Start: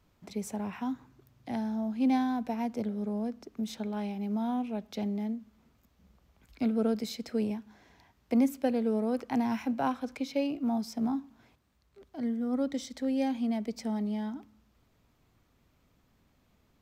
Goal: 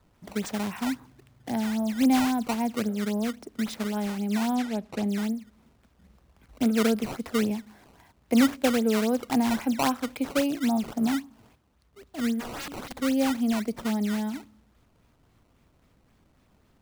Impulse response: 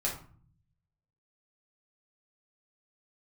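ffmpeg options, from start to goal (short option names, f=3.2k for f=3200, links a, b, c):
-filter_complex "[0:a]acrusher=samples=15:mix=1:aa=0.000001:lfo=1:lforange=24:lforate=3.7,asettb=1/sr,asplit=3[a][b][c];[a]atrim=end=4.554[d];[b]atrim=start=4.55:end=5.09,asetpts=PTS-STARTPTS,afade=t=in:d=0.004:c=qsin,afade=t=out:st=0.536:d=0.004:c=qsin,highshelf=f=11k:g=-11.5[e];[c]atrim=start=5.086[f];[d][e]acrossfade=d=0.004:c1=hsin:c2=qsin[g];[g][f]acrossfade=d=0.004:c1=qsin:c2=hsin,asplit=3[h][i][j];[h]afade=t=out:st=12.39:d=0.02[k];[i]aeval=exprs='(mod(66.8*val(0)+1,2)-1)/66.8':c=same,afade=t=in:st=12.39:d=0.02,afade=t=out:st=12.96:d=0.02[l];[j]afade=t=in:st=12.96:d=0.02[m];[k][l][m]amix=inputs=3:normalize=0,volume=5dB"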